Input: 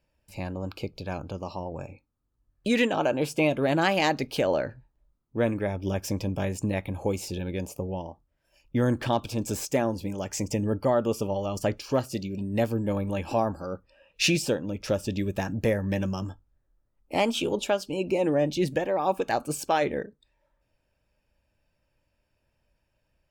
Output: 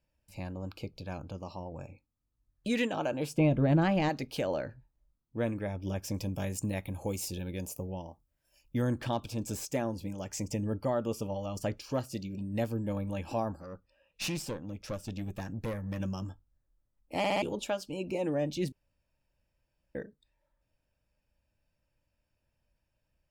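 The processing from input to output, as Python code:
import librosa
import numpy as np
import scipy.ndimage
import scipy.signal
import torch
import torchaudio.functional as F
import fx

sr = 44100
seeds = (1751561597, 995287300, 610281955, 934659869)

y = fx.riaa(x, sr, side='playback', at=(3.36, 4.08), fade=0.02)
y = fx.high_shelf(y, sr, hz=6500.0, db=11.5, at=(6.14, 8.82))
y = fx.tube_stage(y, sr, drive_db=23.0, bias=0.6, at=(13.56, 16.0))
y = fx.edit(y, sr, fx.stutter_over(start_s=17.18, slice_s=0.06, count=4),
    fx.room_tone_fill(start_s=18.72, length_s=1.23), tone=tone)
y = fx.bass_treble(y, sr, bass_db=3, treble_db=2)
y = fx.notch(y, sr, hz=400.0, q=12.0)
y = y * librosa.db_to_amplitude(-7.5)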